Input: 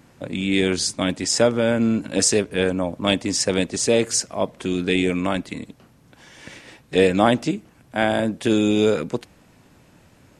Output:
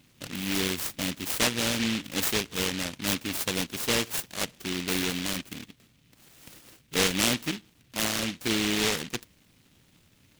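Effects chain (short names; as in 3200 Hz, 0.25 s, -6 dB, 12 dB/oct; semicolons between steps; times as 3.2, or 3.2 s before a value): noise-modulated delay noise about 2700 Hz, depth 0.39 ms; gain -8.5 dB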